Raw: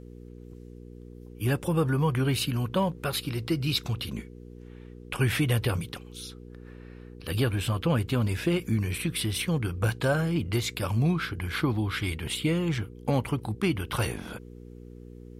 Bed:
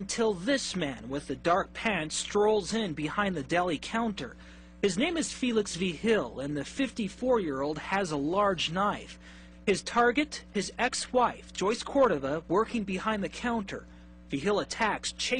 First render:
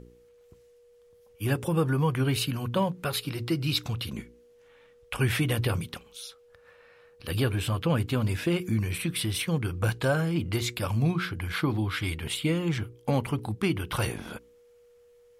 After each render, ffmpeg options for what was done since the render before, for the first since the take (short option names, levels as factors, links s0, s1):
-af "bandreject=f=60:t=h:w=4,bandreject=f=120:t=h:w=4,bandreject=f=180:t=h:w=4,bandreject=f=240:t=h:w=4,bandreject=f=300:t=h:w=4,bandreject=f=360:t=h:w=4,bandreject=f=420:t=h:w=4"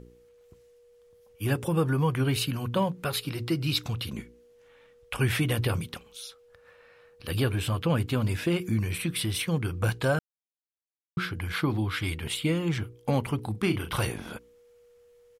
-filter_complex "[0:a]asplit=3[s0][s1][s2];[s0]afade=t=out:st=13.54:d=0.02[s3];[s1]asplit=2[s4][s5];[s5]adelay=38,volume=0.398[s6];[s4][s6]amix=inputs=2:normalize=0,afade=t=in:st=13.54:d=0.02,afade=t=out:st=14.01:d=0.02[s7];[s2]afade=t=in:st=14.01:d=0.02[s8];[s3][s7][s8]amix=inputs=3:normalize=0,asplit=3[s9][s10][s11];[s9]atrim=end=10.19,asetpts=PTS-STARTPTS,afade=t=out:st=10.186:d=0.004:c=hsin[s12];[s10]atrim=start=10.19:end=11.17,asetpts=PTS-STARTPTS,volume=0[s13];[s11]atrim=start=11.17,asetpts=PTS-STARTPTS,afade=t=in:d=0.004:c=hsin[s14];[s12][s13][s14]concat=n=3:v=0:a=1"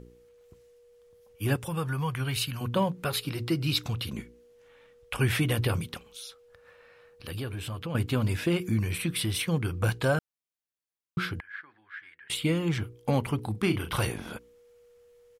-filter_complex "[0:a]asettb=1/sr,asplit=3[s0][s1][s2];[s0]atrim=end=1.564[s3];[s1]atrim=start=1.56:end=2.61,asetpts=PTS-STARTPTS,afade=t=in:d=0.004:c=qsin,afade=t=out:st=1.046:d=0.004:c=qsin,equalizer=f=320:w=0.75:g=-12[s4];[s2]atrim=start=2.606[s5];[s3][s4]acrossfade=d=0.004:c1=hsin:c2=qsin[s6];[s6][s5]acrossfade=d=0.004:c1=qsin:c2=hsin,asettb=1/sr,asplit=3[s7][s8][s9];[s7]atrim=end=6.104[s10];[s8]atrim=start=6.1:end=7.95,asetpts=PTS-STARTPTS,afade=t=in:d=0.004:c=qsin,afade=t=out:st=1.846:d=0.004:c=qsin,acompressor=threshold=0.0126:ratio=2:attack=3.2:release=140:knee=1:detection=peak[s11];[s9]atrim=start=7.946[s12];[s10][s11]acrossfade=d=0.004:c1=hsin:c2=qsin[s13];[s13][s12]acrossfade=d=0.004:c1=qsin:c2=hsin,asettb=1/sr,asplit=3[s14][s15][s16];[s14]atrim=end=11.404[s17];[s15]atrim=start=11.4:end=12.3,asetpts=PTS-STARTPTS,afade=t=in:d=0.004:c=qsin,afade=t=out:st=0.896:d=0.004:c=qsin,bandpass=f=1700:t=q:w=11[s18];[s16]atrim=start=12.296[s19];[s17][s18]acrossfade=d=0.004:c1=hsin:c2=qsin[s20];[s20][s19]acrossfade=d=0.004:c1=qsin:c2=hsin"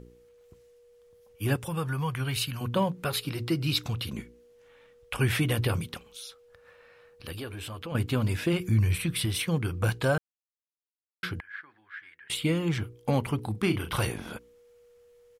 -filter_complex "[0:a]asettb=1/sr,asplit=3[s0][s1][s2];[s0]atrim=end=7.324[s3];[s1]atrim=start=7.32:end=7.92,asetpts=PTS-STARTPTS,afade=t=in:d=0.004:c=qsin,afade=t=out:st=0.596:d=0.004:c=qsin,equalizer=f=140:t=o:w=0.77:g=-10.5[s4];[s2]atrim=start=7.916[s5];[s3][s4]acrossfade=d=0.004:c1=hsin:c2=qsin[s6];[s6][s5]acrossfade=d=0.004:c1=qsin:c2=hsin,asplit=3[s7][s8][s9];[s7]afade=t=out:st=8.52:d=0.02[s10];[s8]asubboost=boost=3:cutoff=120,afade=t=in:st=8.52:d=0.02,afade=t=out:st=9.25:d=0.02[s11];[s9]afade=t=in:st=9.25:d=0.02[s12];[s10][s11][s12]amix=inputs=3:normalize=0,asplit=3[s13][s14][s15];[s13]atrim=end=10.18,asetpts=PTS-STARTPTS,afade=t=out:st=10.176:d=0.004:c=hsin[s16];[s14]atrim=start=10.18:end=11.23,asetpts=PTS-STARTPTS,volume=0[s17];[s15]atrim=start=11.23,asetpts=PTS-STARTPTS,afade=t=in:d=0.004:c=hsin[s18];[s16][s17][s18]concat=n=3:v=0:a=1"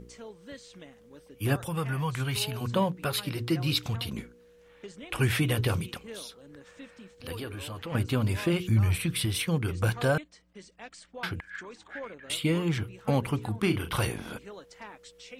-filter_complex "[1:a]volume=0.133[s0];[0:a][s0]amix=inputs=2:normalize=0"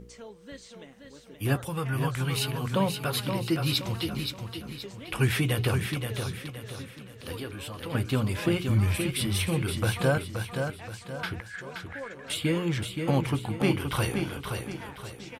-filter_complex "[0:a]asplit=2[s0][s1];[s1]adelay=15,volume=0.224[s2];[s0][s2]amix=inputs=2:normalize=0,asplit=2[s3][s4];[s4]aecho=0:1:524|1048|1572|2096|2620:0.501|0.2|0.0802|0.0321|0.0128[s5];[s3][s5]amix=inputs=2:normalize=0"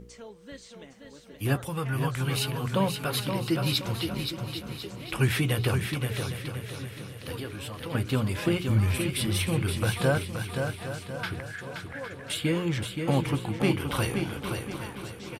-af "aecho=1:1:809|1618|2427|3236:0.237|0.0925|0.0361|0.0141"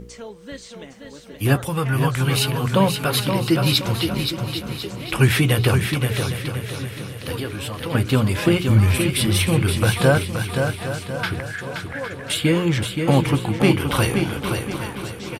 -af "volume=2.66"